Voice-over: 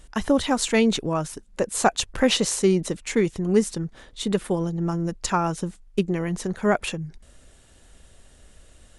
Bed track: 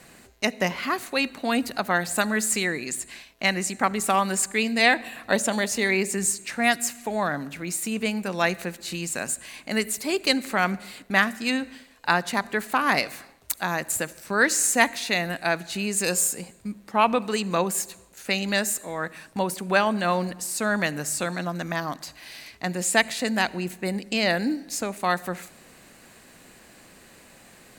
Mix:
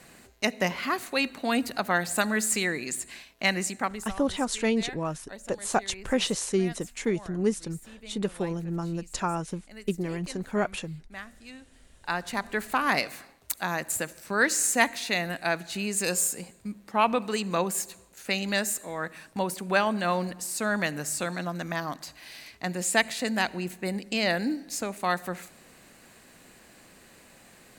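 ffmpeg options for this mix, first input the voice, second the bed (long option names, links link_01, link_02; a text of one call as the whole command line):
ffmpeg -i stem1.wav -i stem2.wav -filter_complex "[0:a]adelay=3900,volume=-6dB[link_01];[1:a]volume=16dB,afade=type=out:start_time=3.62:duration=0.52:silence=0.112202,afade=type=in:start_time=11.72:duration=0.87:silence=0.125893[link_02];[link_01][link_02]amix=inputs=2:normalize=0" out.wav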